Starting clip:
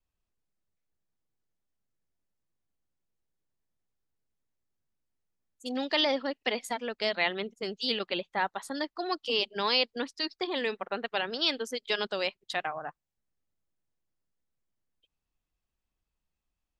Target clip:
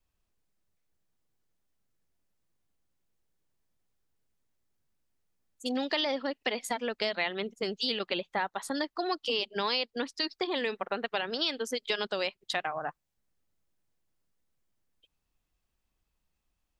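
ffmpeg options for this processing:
ffmpeg -i in.wav -af "acompressor=threshold=-34dB:ratio=3,volume=5dB" out.wav

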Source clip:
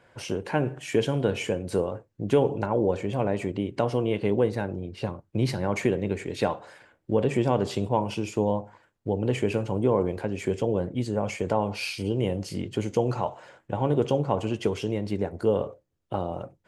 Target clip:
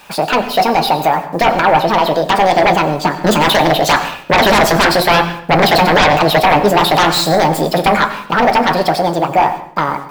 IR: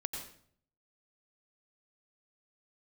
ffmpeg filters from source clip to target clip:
-filter_complex "[0:a]equalizer=frequency=130:width_type=o:width=2.4:gain=-8.5,bandreject=frequency=220.1:width_type=h:width=4,bandreject=frequency=440.2:width_type=h:width=4,bandreject=frequency=660.3:width_type=h:width=4,asetrate=72765,aresample=44100,dynaudnorm=framelen=210:gausssize=31:maxgain=9dB,aeval=exprs='0.75*sin(PI/2*7.94*val(0)/0.75)':channel_layout=same,equalizer=frequency=8800:width_type=o:width=1.5:gain=-9.5,acrusher=bits=6:mix=0:aa=0.000001,flanger=delay=6.4:depth=1.5:regen=-74:speed=0.31:shape=triangular,asplit=2[link_01][link_02];[1:a]atrim=start_sample=2205[link_03];[link_02][link_03]afir=irnorm=-1:irlink=0,volume=-5dB[link_04];[link_01][link_04]amix=inputs=2:normalize=0,volume=-2dB"

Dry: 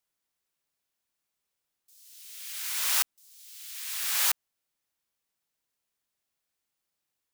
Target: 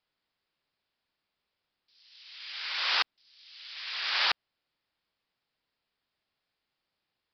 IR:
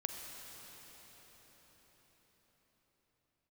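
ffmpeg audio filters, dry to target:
-af "aresample=11025,aresample=44100,volume=5dB"

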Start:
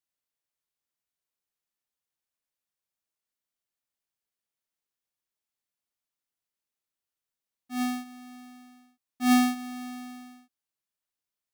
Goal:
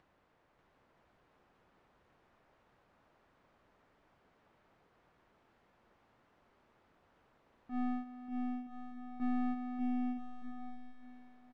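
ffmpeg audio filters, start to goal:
ffmpeg -i in.wav -af "aeval=exprs='(tanh(50.1*val(0)+0.6)-tanh(0.6))/50.1':channel_layout=same,lowpass=1200,acompressor=mode=upward:threshold=-47dB:ratio=2.5,aecho=1:1:590|973.5|1223|1385|1490:0.631|0.398|0.251|0.158|0.1" out.wav

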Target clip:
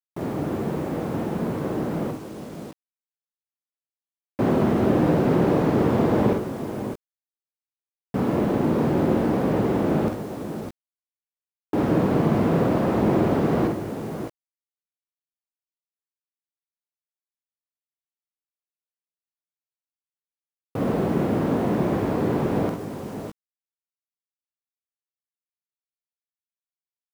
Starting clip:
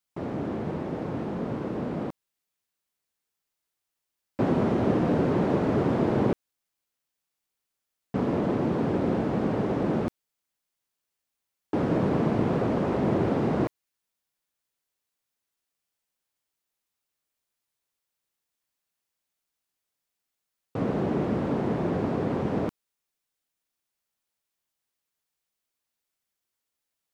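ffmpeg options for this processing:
ffmpeg -i in.wav -filter_complex "[0:a]asplit=2[link_01][link_02];[link_02]asoftclip=type=tanh:threshold=-20dB,volume=-8dB[link_03];[link_01][link_03]amix=inputs=2:normalize=0,aecho=1:1:48|61|67|149|606|625:0.531|0.237|0.211|0.178|0.355|0.15,acrusher=bits=7:mix=0:aa=0.000001" out.wav

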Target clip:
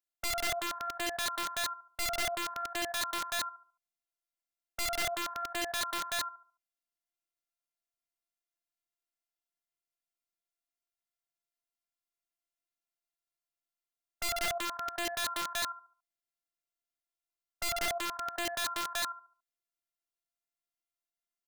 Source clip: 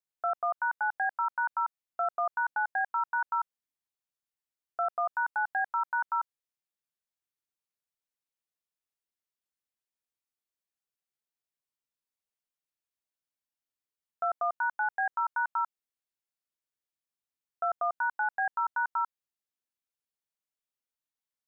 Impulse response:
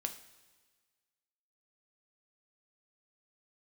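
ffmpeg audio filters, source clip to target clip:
-filter_complex "[0:a]afftfilt=real='hypot(re,im)*cos(PI*b)':imag='0':win_size=512:overlap=0.75,asplit=2[link_01][link_02];[link_02]adelay=71,lowpass=frequency=1400:poles=1,volume=-5dB,asplit=2[link_03][link_04];[link_04]adelay=71,lowpass=frequency=1400:poles=1,volume=0.4,asplit=2[link_05][link_06];[link_06]adelay=71,lowpass=frequency=1400:poles=1,volume=0.4,asplit=2[link_07][link_08];[link_08]adelay=71,lowpass=frequency=1400:poles=1,volume=0.4,asplit=2[link_09][link_10];[link_10]adelay=71,lowpass=frequency=1400:poles=1,volume=0.4[link_11];[link_01][link_03][link_05][link_07][link_09][link_11]amix=inputs=6:normalize=0,aeval=exprs='(mod(25.1*val(0)+1,2)-1)/25.1':channel_layout=same"

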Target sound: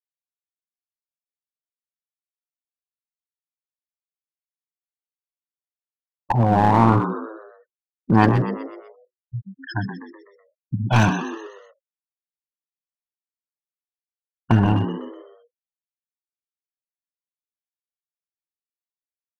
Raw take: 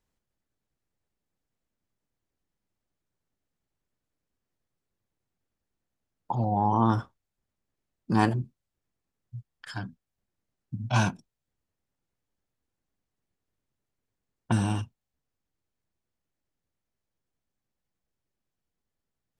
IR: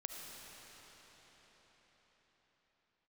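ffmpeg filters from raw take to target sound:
-filter_complex "[0:a]lowpass=6900,afftfilt=real='re*gte(hypot(re,im),0.0251)':imag='im*gte(hypot(re,im),0.0251)':win_size=1024:overlap=0.75,adynamicequalizer=threshold=0.002:dfrequency=4200:dqfactor=1.7:tfrequency=4200:tqfactor=1.7:attack=5:release=100:ratio=0.375:range=1.5:mode=cutabove:tftype=bell,asplit=2[link_01][link_02];[link_02]alimiter=limit=-16.5dB:level=0:latency=1:release=24,volume=-2dB[link_03];[link_01][link_03]amix=inputs=2:normalize=0,asplit=6[link_04][link_05][link_06][link_07][link_08][link_09];[link_05]adelay=125,afreqshift=74,volume=-9.5dB[link_10];[link_06]adelay=250,afreqshift=148,volume=-16.1dB[link_11];[link_07]adelay=375,afreqshift=222,volume=-22.6dB[link_12];[link_08]adelay=500,afreqshift=296,volume=-29.2dB[link_13];[link_09]adelay=625,afreqshift=370,volume=-35.7dB[link_14];[link_04][link_10][link_11][link_12][link_13][link_14]amix=inputs=6:normalize=0,aeval=exprs='clip(val(0),-1,0.0891)':channel_layout=same,volume=5dB"

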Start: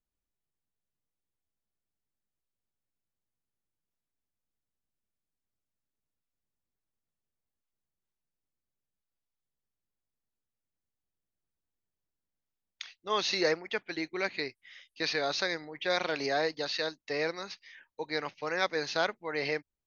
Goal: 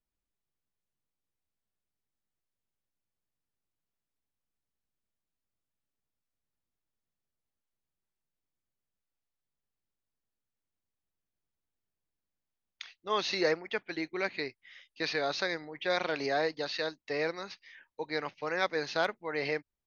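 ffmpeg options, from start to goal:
ffmpeg -i in.wav -af "lowpass=frequency=4000:poles=1,asoftclip=type=hard:threshold=-15.5dB" out.wav

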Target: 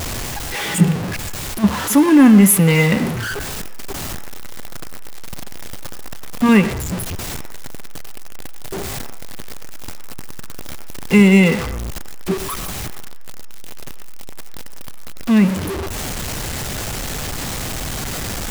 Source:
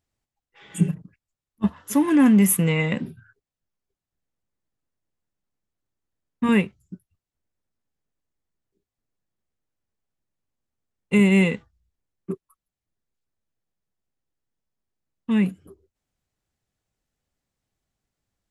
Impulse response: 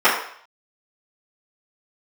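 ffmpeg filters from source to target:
-filter_complex "[0:a]aeval=exprs='val(0)+0.5*0.0631*sgn(val(0))':channel_layout=same,asplit=2[link_01][link_02];[1:a]atrim=start_sample=2205,adelay=87[link_03];[link_02][link_03]afir=irnorm=-1:irlink=0,volume=-35.5dB[link_04];[link_01][link_04]amix=inputs=2:normalize=0,volume=5.5dB"

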